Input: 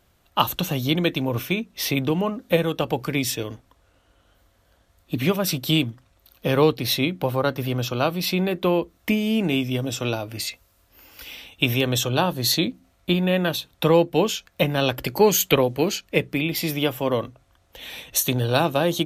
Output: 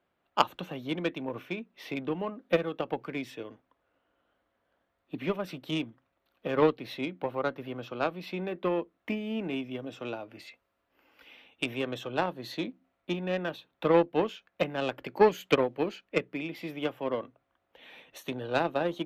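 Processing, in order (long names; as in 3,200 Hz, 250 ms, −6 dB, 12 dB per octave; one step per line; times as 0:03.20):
three-way crossover with the lows and the highs turned down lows −18 dB, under 180 Hz, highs −21 dB, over 3,000 Hz
harmonic generator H 3 −14 dB, 7 −38 dB, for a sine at −4.5 dBFS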